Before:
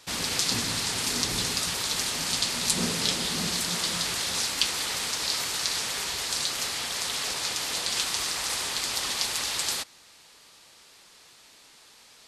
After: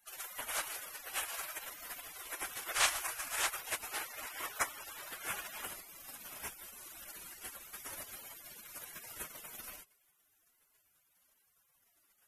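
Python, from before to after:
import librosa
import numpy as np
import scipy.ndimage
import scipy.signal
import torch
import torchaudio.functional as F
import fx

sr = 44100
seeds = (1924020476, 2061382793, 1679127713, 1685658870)

y = fx.spec_gate(x, sr, threshold_db=-20, keep='weak')
y = fx.peak_eq(y, sr, hz=1400.0, db=fx.steps((0.0, 9.0), (3.91, 15.0), (5.65, 6.0)), octaves=2.8)
y = y * librosa.db_to_amplitude(2.0)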